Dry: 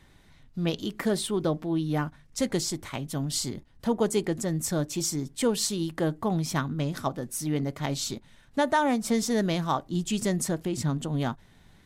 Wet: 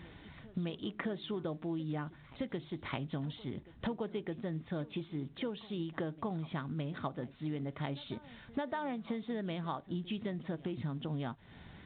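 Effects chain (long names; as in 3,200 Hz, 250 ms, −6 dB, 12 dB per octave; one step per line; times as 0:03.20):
downward compressor 16 to 1, threshold −39 dBFS, peak gain reduction 20.5 dB
high-pass filter 51 Hz 12 dB per octave
de-essing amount 90%
on a send: backwards echo 615 ms −19.5 dB
on the sum: level +5 dB
mu-law 64 kbit/s 8,000 Hz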